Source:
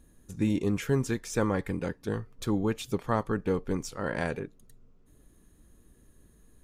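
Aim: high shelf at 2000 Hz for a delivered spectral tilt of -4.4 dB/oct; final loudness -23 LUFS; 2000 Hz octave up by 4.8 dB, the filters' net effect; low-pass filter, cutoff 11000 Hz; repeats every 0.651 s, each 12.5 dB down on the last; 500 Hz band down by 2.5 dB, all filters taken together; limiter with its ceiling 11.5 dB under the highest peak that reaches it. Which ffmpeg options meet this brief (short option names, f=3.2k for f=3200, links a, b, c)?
-af "lowpass=11k,equalizer=f=500:t=o:g=-3.5,highshelf=f=2k:g=6,equalizer=f=2k:t=o:g=3,alimiter=limit=-23dB:level=0:latency=1,aecho=1:1:651|1302|1953:0.237|0.0569|0.0137,volume=12dB"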